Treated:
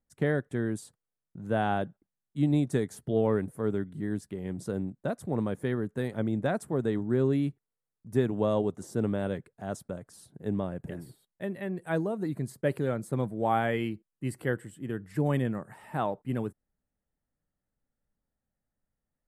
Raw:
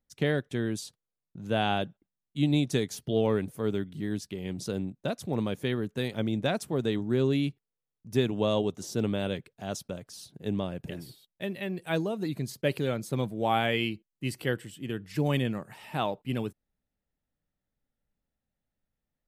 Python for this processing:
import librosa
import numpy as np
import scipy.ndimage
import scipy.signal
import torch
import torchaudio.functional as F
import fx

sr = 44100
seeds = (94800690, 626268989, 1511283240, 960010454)

y = scipy.signal.sosfilt(scipy.signal.butter(2, 10000.0, 'lowpass', fs=sr, output='sos'), x)
y = fx.band_shelf(y, sr, hz=3900.0, db=-12.5, octaves=1.7)